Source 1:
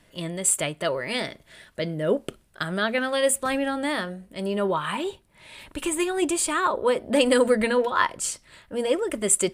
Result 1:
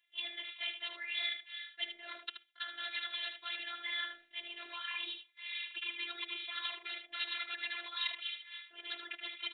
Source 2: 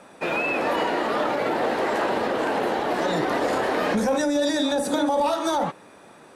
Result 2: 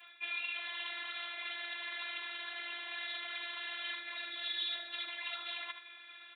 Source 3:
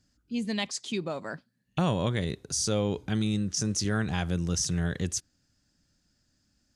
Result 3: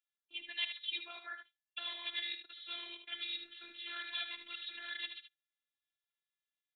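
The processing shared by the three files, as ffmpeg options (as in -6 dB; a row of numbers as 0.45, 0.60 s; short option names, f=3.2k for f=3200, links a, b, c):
-af "aresample=8000,aeval=exprs='0.106*(abs(mod(val(0)/0.106+3,4)-2)-1)':c=same,aresample=44100,highpass=f=270:p=1,crystalizer=i=4.5:c=0,afftfilt=real='hypot(re,im)*cos(2*PI*random(0))':imag='hypot(re,im)*sin(2*PI*random(1))':win_size=512:overlap=0.75,agate=range=-18dB:threshold=-59dB:ratio=16:detection=peak,areverse,acompressor=threshold=-38dB:ratio=10,areverse,aderivative,afftfilt=real='hypot(re,im)*cos(PI*b)':imag='0':win_size=512:overlap=0.75,equalizer=f=2.2k:w=0.52:g=8,aecho=1:1:76:0.376,volume=9dB"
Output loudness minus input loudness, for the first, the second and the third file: -15.0, -15.5, -12.0 LU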